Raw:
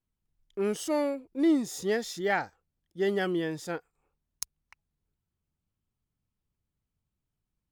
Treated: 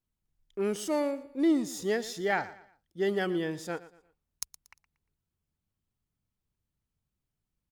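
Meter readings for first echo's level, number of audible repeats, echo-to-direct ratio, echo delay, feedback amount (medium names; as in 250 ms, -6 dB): -17.0 dB, 2, -16.5 dB, 117 ms, 34%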